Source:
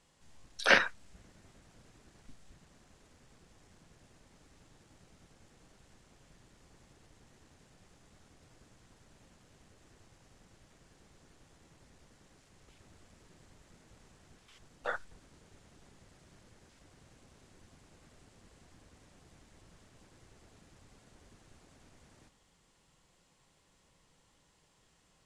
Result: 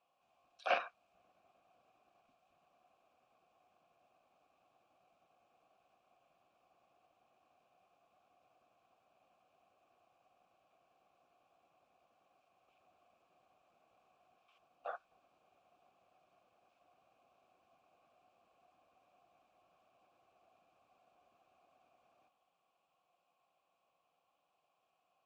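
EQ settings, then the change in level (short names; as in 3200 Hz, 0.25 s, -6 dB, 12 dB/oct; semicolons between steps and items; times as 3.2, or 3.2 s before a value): vowel filter a; notch 430 Hz, Q 12; +3.0 dB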